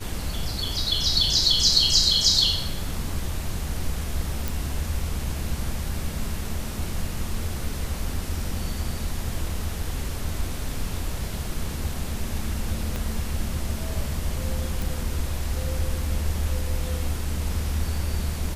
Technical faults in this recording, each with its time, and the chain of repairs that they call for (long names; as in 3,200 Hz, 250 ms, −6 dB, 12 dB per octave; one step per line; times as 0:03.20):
0:04.48: click
0:12.96: click −15 dBFS
0:14.82: click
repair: click removal